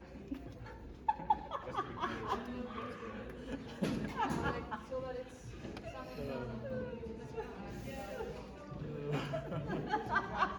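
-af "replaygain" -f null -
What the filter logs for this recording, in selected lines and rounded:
track_gain = +20.8 dB
track_peak = 0.077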